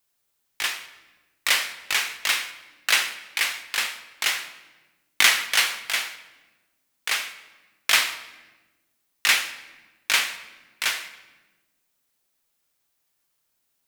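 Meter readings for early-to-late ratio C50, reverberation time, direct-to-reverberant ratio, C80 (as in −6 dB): 12.0 dB, 1.2 s, 8.0 dB, 14.0 dB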